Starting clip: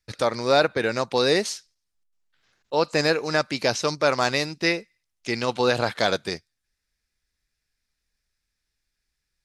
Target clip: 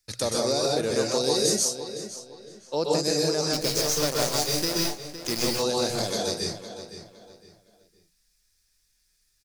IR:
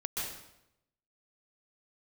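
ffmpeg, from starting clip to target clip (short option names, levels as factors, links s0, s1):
-filter_complex "[0:a]bass=f=250:g=0,treble=f=4000:g=13,bandreject=f=60:t=h:w=6,bandreject=f=120:t=h:w=6,bandreject=f=180:t=h:w=6,asettb=1/sr,asplit=3[s0][s1][s2];[s0]atrim=end=1.554[s3];[s1]atrim=start=1.55:end=2.85,asetpts=PTS-STARTPTS,afade=t=in:d=0.004:c=qsin,afade=t=out:st=1.296:d=0.004:c=qsin,highshelf=f=4400:g=-7.5[s4];[s2]atrim=start=2.846[s5];[s3][s4]acrossfade=d=0.004:c1=hsin:c2=qsin[s6];[s6][s5]acrossfade=d=0.004:c1=qsin:c2=hsin,acrossover=split=690|4900[s7][s8][s9];[s8]acompressor=threshold=0.0141:ratio=6[s10];[s7][s10][s9]amix=inputs=3:normalize=0,alimiter=limit=0.211:level=0:latency=1:release=336,asettb=1/sr,asplit=3[s11][s12][s13];[s11]atrim=end=3.534[s14];[s12]atrim=start=3.53:end=5.45,asetpts=PTS-STARTPTS,afade=t=in:d=0.004:c=qsin,afade=t=out:st=1.916:d=0.004:c=qsin,acrusher=bits=5:dc=4:mix=0:aa=0.000001[s15];[s13]atrim=start=5.446[s16];[s14][s15]acrossfade=d=0.004:c1=hsin:c2=qsin[s17];[s17][s16]acrossfade=d=0.004:c1=qsin:c2=hsin,asplit=2[s18][s19];[s19]adelay=512,lowpass=f=5000:p=1,volume=0.282,asplit=2[s20][s21];[s21]adelay=512,lowpass=f=5000:p=1,volume=0.32,asplit=2[s22][s23];[s23]adelay=512,lowpass=f=5000:p=1,volume=0.32[s24];[s18][s20][s22][s24]amix=inputs=4:normalize=0[s25];[1:a]atrim=start_sample=2205,afade=t=out:st=0.24:d=0.01,atrim=end_sample=11025[s26];[s25][s26]afir=irnorm=-1:irlink=0"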